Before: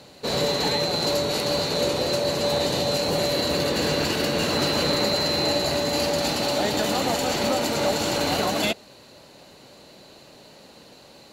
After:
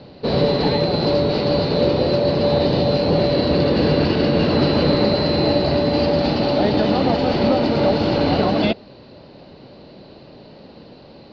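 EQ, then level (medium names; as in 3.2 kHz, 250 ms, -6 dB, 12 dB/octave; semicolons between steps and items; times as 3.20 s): Chebyshev low-pass 5 kHz, order 5; tilt shelf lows +6 dB, about 740 Hz; +5.0 dB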